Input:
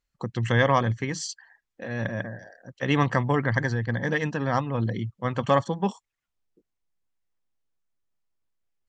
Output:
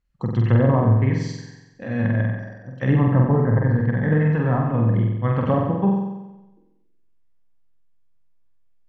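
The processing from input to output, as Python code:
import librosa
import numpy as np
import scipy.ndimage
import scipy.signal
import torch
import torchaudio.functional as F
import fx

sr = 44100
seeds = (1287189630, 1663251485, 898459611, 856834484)

y = fx.env_lowpass_down(x, sr, base_hz=760.0, full_db=-19.5)
y = fx.bass_treble(y, sr, bass_db=9, treble_db=-9)
y = fx.room_flutter(y, sr, wall_m=7.9, rt60_s=1.0)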